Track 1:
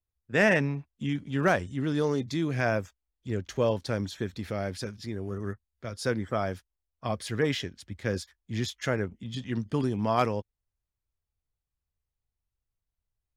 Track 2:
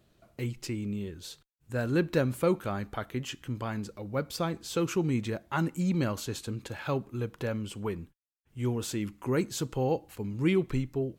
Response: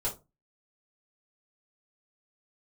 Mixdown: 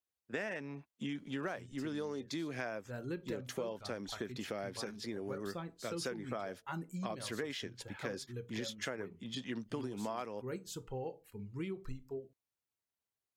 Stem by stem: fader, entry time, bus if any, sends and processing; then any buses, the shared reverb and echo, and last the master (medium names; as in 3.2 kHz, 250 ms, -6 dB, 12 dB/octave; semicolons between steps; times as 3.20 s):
-1.0 dB, 0.00 s, no send, high-pass 240 Hz 12 dB/octave
-11.5 dB, 1.15 s, send -13 dB, reverb removal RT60 1.8 s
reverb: on, RT60 0.25 s, pre-delay 4 ms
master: compression 10:1, threshold -36 dBFS, peak gain reduction 17.5 dB